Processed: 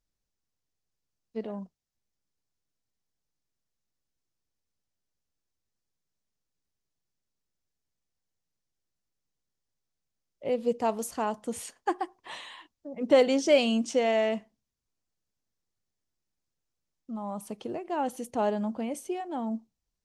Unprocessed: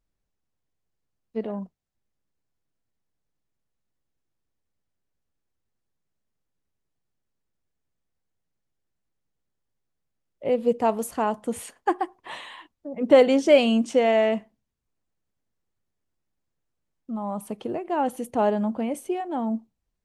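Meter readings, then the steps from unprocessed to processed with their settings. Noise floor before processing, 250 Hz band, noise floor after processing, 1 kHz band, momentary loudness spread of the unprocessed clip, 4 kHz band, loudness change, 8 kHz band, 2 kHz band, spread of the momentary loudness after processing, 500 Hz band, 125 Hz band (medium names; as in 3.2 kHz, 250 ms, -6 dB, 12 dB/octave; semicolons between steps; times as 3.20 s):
-80 dBFS, -5.5 dB, -85 dBFS, -5.5 dB, 18 LU, -2.0 dB, -5.0 dB, 0.0 dB, -4.0 dB, 19 LU, -5.5 dB, no reading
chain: peaking EQ 5.6 kHz +9 dB 1.2 oct; trim -5.5 dB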